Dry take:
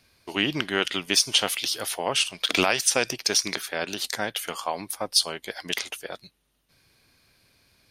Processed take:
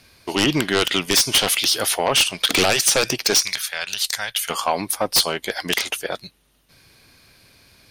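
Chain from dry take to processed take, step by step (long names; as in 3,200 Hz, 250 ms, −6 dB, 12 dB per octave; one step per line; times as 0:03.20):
0:03.43–0:04.50: guitar amp tone stack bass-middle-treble 10-0-10
sine wavefolder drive 12 dB, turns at −4.5 dBFS
level −6 dB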